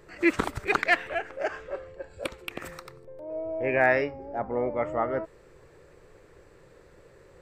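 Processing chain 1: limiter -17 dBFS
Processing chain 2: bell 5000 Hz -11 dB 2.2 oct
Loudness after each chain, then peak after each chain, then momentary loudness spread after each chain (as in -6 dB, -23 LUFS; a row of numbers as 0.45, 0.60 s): -31.5, -30.0 LUFS; -17.0, -11.5 dBFS; 14, 19 LU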